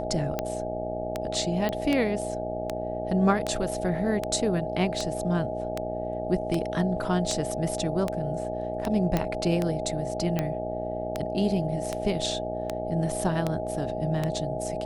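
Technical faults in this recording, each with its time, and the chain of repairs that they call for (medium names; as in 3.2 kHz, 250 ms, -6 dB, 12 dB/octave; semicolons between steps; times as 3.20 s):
buzz 60 Hz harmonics 14 -34 dBFS
tick 78 rpm -13 dBFS
whine 630 Hz -32 dBFS
1.69 s: pop -16 dBFS
9.17 s: pop -11 dBFS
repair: de-click; de-hum 60 Hz, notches 14; band-stop 630 Hz, Q 30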